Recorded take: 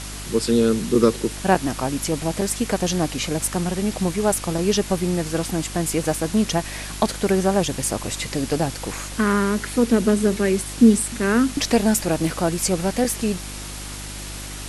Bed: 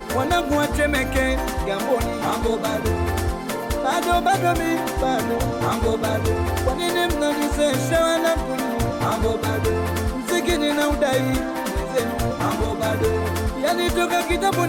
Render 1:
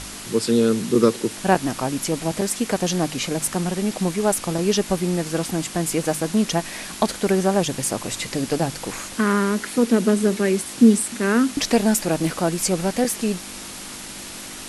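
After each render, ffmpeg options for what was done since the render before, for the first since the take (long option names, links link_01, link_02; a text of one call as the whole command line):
ffmpeg -i in.wav -af "bandreject=frequency=50:width_type=h:width=4,bandreject=frequency=100:width_type=h:width=4,bandreject=frequency=150:width_type=h:width=4" out.wav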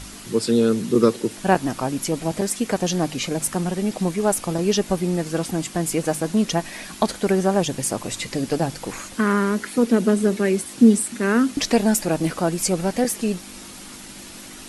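ffmpeg -i in.wav -af "afftdn=noise_reduction=6:noise_floor=-36" out.wav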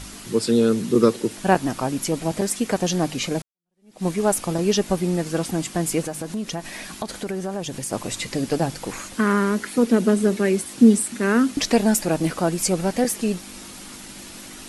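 ffmpeg -i in.wav -filter_complex "[0:a]asettb=1/sr,asplit=3[link_01][link_02][link_03];[link_01]atrim=end=6.064[link_04];[link_02]atrim=start=6.06:end=7.93,asetpts=PTS-STARTPTS,afade=type=in:duration=0.004:curve=qsin,afade=type=out:start_time=1.866:duration=0.004:curve=qsin,acompressor=threshold=-27dB:ratio=3:attack=3.2:release=140:knee=1:detection=peak[link_05];[link_03]atrim=start=7.926[link_06];[link_04][link_05]acrossfade=duration=0.004:curve1=hsin:curve2=qsin[link_07];[link_07][link_06]acrossfade=duration=0.004:curve1=qsin:curve2=hsin,asplit=2[link_08][link_09];[link_08]atrim=end=3.42,asetpts=PTS-STARTPTS,afade=type=out:start_time=3.416:duration=0.004:curve=hsin[link_10];[link_09]atrim=start=3.42,asetpts=PTS-STARTPTS,afade=type=in:duration=0.64:curve=exp[link_11];[link_10][link_11]concat=n=2:v=0:a=1" out.wav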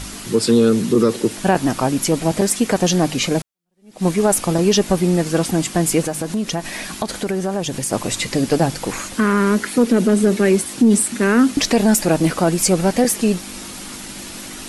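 ffmpeg -i in.wav -af "alimiter=limit=-11dB:level=0:latency=1:release=38,acontrast=65" out.wav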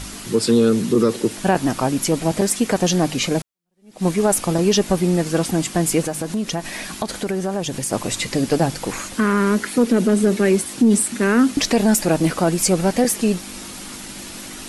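ffmpeg -i in.wav -af "volume=-1.5dB" out.wav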